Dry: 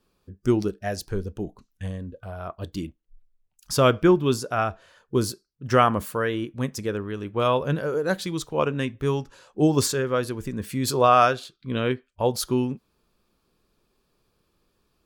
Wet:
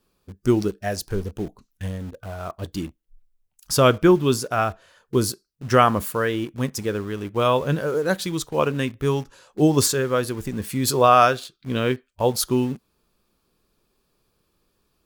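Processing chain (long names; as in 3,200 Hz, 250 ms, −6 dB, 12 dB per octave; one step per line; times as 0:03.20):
high-shelf EQ 8,100 Hz +6 dB
in parallel at −10.5 dB: bit reduction 6 bits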